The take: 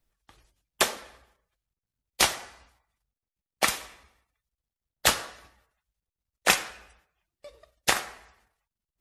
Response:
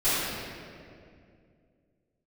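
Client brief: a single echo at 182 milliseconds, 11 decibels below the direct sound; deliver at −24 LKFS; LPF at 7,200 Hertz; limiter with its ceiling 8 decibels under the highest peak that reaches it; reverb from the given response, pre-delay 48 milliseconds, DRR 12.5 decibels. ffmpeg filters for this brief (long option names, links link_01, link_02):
-filter_complex "[0:a]lowpass=7200,alimiter=limit=-13dB:level=0:latency=1,aecho=1:1:182:0.282,asplit=2[link_01][link_02];[1:a]atrim=start_sample=2205,adelay=48[link_03];[link_02][link_03]afir=irnorm=-1:irlink=0,volume=-27.5dB[link_04];[link_01][link_04]amix=inputs=2:normalize=0,volume=7.5dB"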